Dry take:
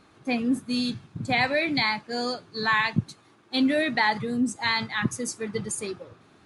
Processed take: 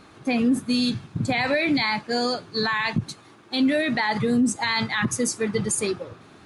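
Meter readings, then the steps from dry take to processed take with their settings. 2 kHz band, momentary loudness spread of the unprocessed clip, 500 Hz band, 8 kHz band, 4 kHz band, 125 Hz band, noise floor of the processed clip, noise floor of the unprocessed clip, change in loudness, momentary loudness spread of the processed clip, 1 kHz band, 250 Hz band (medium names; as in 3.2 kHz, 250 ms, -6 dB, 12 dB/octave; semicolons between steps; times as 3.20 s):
+0.5 dB, 9 LU, +4.0 dB, +6.5 dB, +2.0 dB, +3.0 dB, -50 dBFS, -58 dBFS, +2.5 dB, 7 LU, 0.0 dB, +4.0 dB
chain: peak limiter -21.5 dBFS, peak gain reduction 10.5 dB; trim +7.5 dB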